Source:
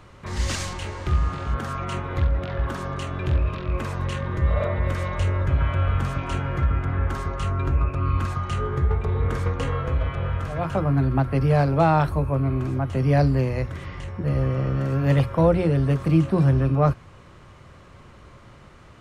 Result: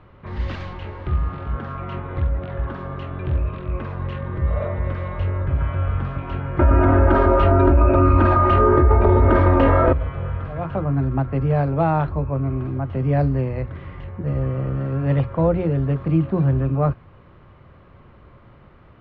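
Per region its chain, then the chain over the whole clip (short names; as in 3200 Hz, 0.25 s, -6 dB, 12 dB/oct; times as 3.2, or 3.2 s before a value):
6.59–9.93 bell 560 Hz +12 dB 2.9 oct + comb 3.2 ms, depth 96% + fast leveller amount 70%
whole clip: LPF 3800 Hz 24 dB/oct; high shelf 2300 Hz -10.5 dB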